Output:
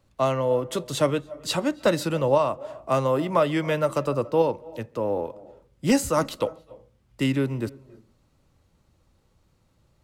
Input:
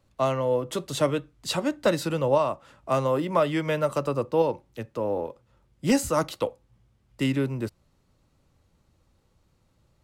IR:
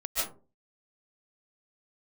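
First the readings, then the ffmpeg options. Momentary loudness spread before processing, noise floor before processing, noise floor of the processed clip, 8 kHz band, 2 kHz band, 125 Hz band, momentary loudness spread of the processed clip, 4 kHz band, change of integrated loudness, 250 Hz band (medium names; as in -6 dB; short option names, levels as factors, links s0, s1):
9 LU, -67 dBFS, -65 dBFS, +1.5 dB, +1.5 dB, +1.5 dB, 9 LU, +1.5 dB, +1.5 dB, +1.5 dB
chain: -filter_complex "[0:a]asplit=2[s0][s1];[s1]highshelf=f=2200:g=-11.5[s2];[1:a]atrim=start_sample=2205,adelay=136[s3];[s2][s3]afir=irnorm=-1:irlink=0,volume=0.0501[s4];[s0][s4]amix=inputs=2:normalize=0,volume=1.19"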